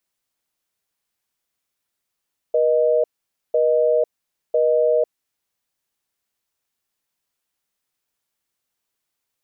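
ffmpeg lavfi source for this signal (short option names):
-f lavfi -i "aevalsrc='0.141*(sin(2*PI*480*t)+sin(2*PI*620*t))*clip(min(mod(t,1),0.5-mod(t,1))/0.005,0,1)':d=2.55:s=44100"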